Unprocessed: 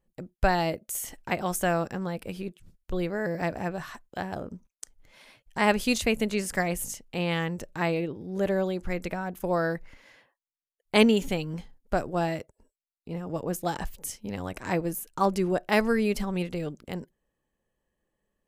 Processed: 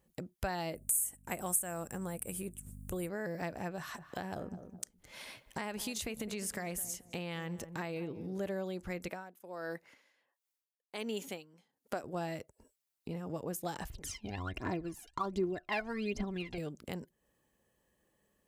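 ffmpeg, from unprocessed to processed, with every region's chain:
-filter_complex "[0:a]asettb=1/sr,asplit=3[a][b][c];[a]atrim=end=0.754[d];[b]atrim=start=0.75:end=3.09,asetpts=PTS-STARTPTS,afade=t=in:d=0.004:c=qsin,afade=t=out:st=2.336:d=0.004:c=qsin,highshelf=f=6.5k:t=q:w=3:g=12,aeval=exprs='val(0)+0.00447*(sin(2*PI*50*n/s)+sin(2*PI*2*50*n/s)/2+sin(2*PI*3*50*n/s)/3+sin(2*PI*4*50*n/s)/4+sin(2*PI*5*50*n/s)/5)':c=same[e];[c]atrim=start=3.086[f];[d][e]acrossfade=d=0.004:c1=hsin:c2=qsin[g];[g][f]acrossfade=d=0.004:c1=qsin:c2=hsin,asettb=1/sr,asplit=3[h][i][j];[h]atrim=end=3.774[k];[i]atrim=start=3.77:end=8.4,asetpts=PTS-STARTPTS,afade=t=in:d=0.004:c=qsin,afade=t=out:st=4.626:d=0.004:c=qsin,acompressor=threshold=-27dB:ratio=6:attack=3.2:release=140:knee=1:detection=peak,asplit=2[l][m];[m]adelay=210,lowpass=f=920:p=1,volume=-13.5dB,asplit=2[n][o];[o]adelay=210,lowpass=f=920:p=1,volume=0.21[p];[l][n][p]amix=inputs=3:normalize=0,atrim=end_sample=204183[q];[j]atrim=start=8.396[r];[k][q]acrossfade=d=0.004:c1=hsin:c2=qsin[s];[s][r]acrossfade=d=0.004:c1=qsin:c2=hsin,asettb=1/sr,asplit=3[t][u][v];[t]atrim=end=9.084[w];[u]atrim=start=9.08:end=12.04,asetpts=PTS-STARTPTS,afade=t=in:d=0.004:c=qsin,afade=t=out:st=2.956:d=0.004:c=qsin,highpass=250,aeval=exprs='val(0)*pow(10,-24*(0.5-0.5*cos(2*PI*1.4*n/s))/20)':c=same[x];[v]atrim=start=12.036[y];[w][x]acrossfade=d=0.004:c1=hsin:c2=qsin[z];[z][y]acrossfade=d=0.004:c1=qsin:c2=hsin,asettb=1/sr,asplit=3[aa][ab][ac];[aa]atrim=end=13.904[ad];[ab]atrim=start=13.9:end=16.58,asetpts=PTS-STARTPTS,afade=t=in:d=0.004:c=qsin,afade=t=out:st=2.676:d=0.004:c=qsin,lowpass=3.8k,aecho=1:1:2.9:0.46,atrim=end_sample=118188,aphaser=in_gain=1:out_gain=1:delay=1.4:decay=0.76:speed=1.3:type=triangular[ae];[ac]atrim=start=16.576[af];[ad][ae]acrossfade=d=0.004:c1=hsin:c2=qsin[ag];[ag][af]acrossfade=d=0.004:c1=qsin:c2=hsin,highpass=54,highshelf=f=5.3k:g=6,acompressor=threshold=-47dB:ratio=2.5,volume=4.5dB"

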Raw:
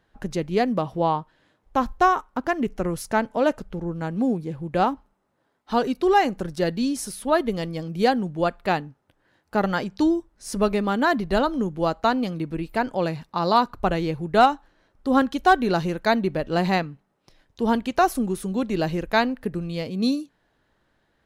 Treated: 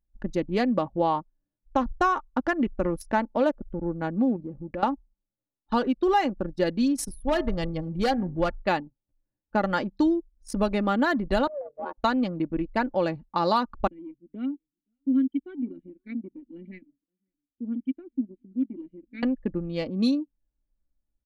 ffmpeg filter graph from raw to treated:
-filter_complex "[0:a]asettb=1/sr,asplit=3[a][b][c];[a]atrim=end=4.364[d];[b]atrim=start=4.36:end=4.83,asetpts=PTS-STARTPTS,afade=t=in:d=0.004:c=qsin,afade=t=out:st=0.466:d=0.004:c=qsin,bandreject=f=94.83:t=h:w=4,bandreject=f=189.66:t=h:w=4,bandreject=f=284.49:t=h:w=4,bandreject=f=379.32:t=h:w=4,bandreject=f=474.15:t=h:w=4,bandreject=f=568.98:t=h:w=4,bandreject=f=663.81:t=h:w=4,bandreject=f=758.64:t=h:w=4,acompressor=threshold=-30dB:ratio=5:attack=3.2:release=140:knee=1:detection=peak[e];[c]atrim=start=4.826[f];[d][e]acrossfade=d=0.004:c1=hsin:c2=qsin[g];[g][f]acrossfade=d=0.004:c1=qsin:c2=hsin,asettb=1/sr,asplit=3[h][i][j];[h]atrim=end=7.084[k];[i]atrim=start=7.08:end=8.63,asetpts=PTS-STARTPTS,afade=t=in:d=0.004:c=qsin,afade=t=out:st=1.546:d=0.004:c=qsin,lowshelf=f=150:t=q:w=1.5:g=11.5,volume=16.5dB,asoftclip=hard,volume=-16.5dB,bandreject=f=126:t=h:w=4,bandreject=f=252:t=h:w=4,bandreject=f=378:t=h:w=4,bandreject=f=504:t=h:w=4,bandreject=f=630:t=h:w=4,bandreject=f=756:t=h:w=4,bandreject=f=882:t=h:w=4,bandreject=f=1.008k:t=h:w=4,bandreject=f=1.134k:t=h:w=4,bandreject=f=1.26k:t=h:w=4,bandreject=f=1.386k:t=h:w=4,bandreject=f=1.512k:t=h:w=4,bandreject=f=1.638k:t=h:w=4,bandreject=f=1.764k:t=h:w=4,bandreject=f=1.89k:t=h:w=4,bandreject=f=2.016k:t=h:w=4,bandreject=f=2.142k:t=h:w=4,bandreject=f=2.268k:t=h:w=4,bandreject=f=2.394k:t=h:w=4[l];[j]atrim=start=8.626[m];[k][l]acrossfade=d=0.004:c1=hsin:c2=qsin[n];[n][m]acrossfade=d=0.004:c1=qsin:c2=hsin,asettb=1/sr,asplit=3[o][p][q];[o]atrim=end=11.474[r];[p]atrim=start=11.47:end=11.98,asetpts=PTS-STARTPTS,afade=t=in:d=0.004:c=qsin,afade=t=out:st=0.506:d=0.004:c=qsin,acompressor=threshold=-24dB:ratio=5:attack=3.2:release=140:knee=1:detection=peak,aeval=exprs='val(0)*sin(2*PI*290*n/s)':c=same,highpass=360,lowpass=2.5k[s];[q]atrim=start=11.976[t];[r][s]acrossfade=d=0.004:c1=hsin:c2=qsin[u];[u][t]acrossfade=d=0.004:c1=qsin:c2=hsin,asettb=1/sr,asplit=3[v][w][x];[v]atrim=end=13.874[y];[w]atrim=start=13.87:end=19.23,asetpts=PTS-STARTPTS,afade=t=in:d=0.004:c=qsin,afade=t=out:st=5.356:d=0.004:c=qsin,asplit=3[z][aa][ab];[z]bandpass=f=270:t=q:w=8,volume=0dB[ac];[aa]bandpass=f=2.29k:t=q:w=8,volume=-6dB[ad];[ab]bandpass=f=3.01k:t=q:w=8,volume=-9dB[ae];[ac][ad][ae]amix=inputs=3:normalize=0,highshelf=f=7.9k:g=-11.5,aecho=1:1:526:0.075,atrim=end_sample=236376[af];[x]atrim=start=19.226[ag];[y][af]acrossfade=d=0.004:c1=hsin:c2=qsin[ah];[ah][ag]acrossfade=d=0.004:c1=qsin:c2=hsin,anlmdn=25.1,aecho=1:1:3.5:0.45,acompressor=threshold=-20dB:ratio=3"

